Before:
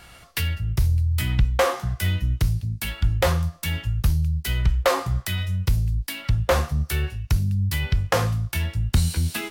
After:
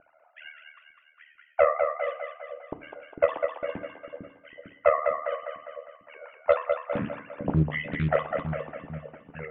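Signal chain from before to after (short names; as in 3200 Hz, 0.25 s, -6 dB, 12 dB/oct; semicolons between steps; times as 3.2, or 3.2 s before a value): sine-wave speech; vibrato 4.5 Hz 14 cents; LPF 2900 Hz 24 dB/oct; reverse; upward compressor, threshold -37 dBFS; reverse; AM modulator 76 Hz, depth 85%; low-pass opened by the level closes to 670 Hz, open at -12.5 dBFS; on a send: split-band echo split 440 Hz, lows 0.451 s, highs 0.202 s, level -5 dB; on the sum: FDN reverb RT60 0.49 s, low-frequency decay 1.4×, high-frequency decay 0.75×, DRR 10.5 dB; Doppler distortion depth 0.84 ms; gain -5.5 dB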